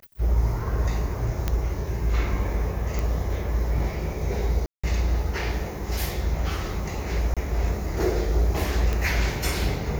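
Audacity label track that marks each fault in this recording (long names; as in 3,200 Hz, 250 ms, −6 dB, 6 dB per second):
1.480000	1.480000	click −10 dBFS
2.990000	2.990000	click
4.660000	4.830000	drop-out 175 ms
7.340000	7.370000	drop-out 26 ms
8.930000	8.930000	click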